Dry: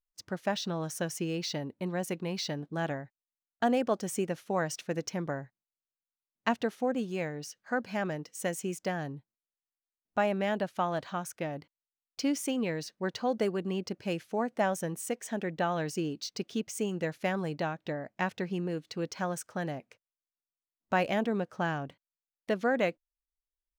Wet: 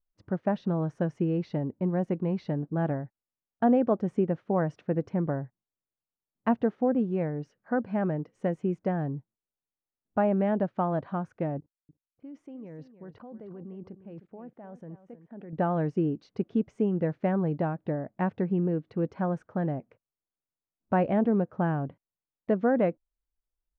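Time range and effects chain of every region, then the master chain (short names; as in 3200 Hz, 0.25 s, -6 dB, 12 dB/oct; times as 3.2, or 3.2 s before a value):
11.58–15.53 low-pass opened by the level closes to 350 Hz, open at -29 dBFS + level quantiser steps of 24 dB + echo 0.308 s -13 dB
whole clip: LPF 1300 Hz 12 dB/oct; low shelf 440 Hz +9 dB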